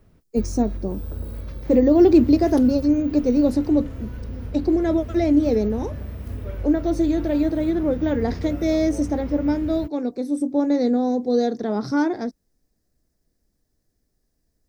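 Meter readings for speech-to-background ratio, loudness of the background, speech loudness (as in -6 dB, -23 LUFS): 12.5 dB, -33.5 LUFS, -21.0 LUFS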